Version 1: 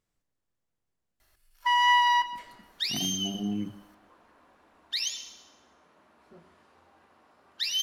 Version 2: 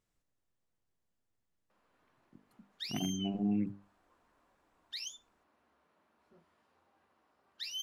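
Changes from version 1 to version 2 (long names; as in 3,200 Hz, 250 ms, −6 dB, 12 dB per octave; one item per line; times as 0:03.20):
first sound: muted
second sound −8.5 dB
reverb: off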